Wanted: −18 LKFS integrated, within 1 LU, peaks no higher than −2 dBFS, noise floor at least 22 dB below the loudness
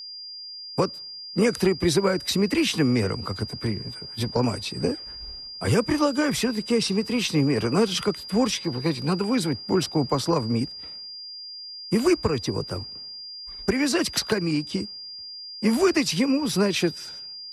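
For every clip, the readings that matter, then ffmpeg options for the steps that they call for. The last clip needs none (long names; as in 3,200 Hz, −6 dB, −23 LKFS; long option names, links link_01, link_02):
interfering tone 4,800 Hz; level of the tone −36 dBFS; integrated loudness −24.5 LKFS; sample peak −10.0 dBFS; target loudness −18.0 LKFS
→ -af "bandreject=frequency=4800:width=30"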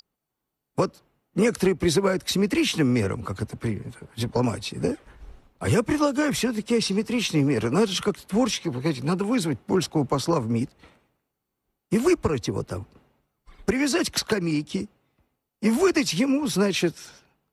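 interfering tone none found; integrated loudness −24.5 LKFS; sample peak −10.5 dBFS; target loudness −18.0 LKFS
→ -af "volume=6.5dB"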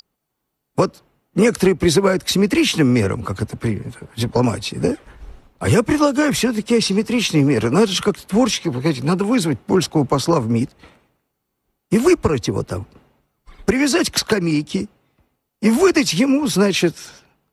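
integrated loudness −18.0 LKFS; sample peak −4.0 dBFS; background noise floor −76 dBFS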